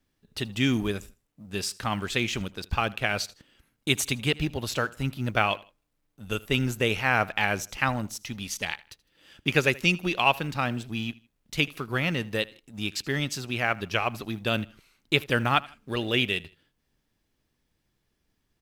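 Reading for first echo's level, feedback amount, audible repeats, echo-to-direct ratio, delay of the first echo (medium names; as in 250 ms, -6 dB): -22.0 dB, 35%, 2, -21.5 dB, 79 ms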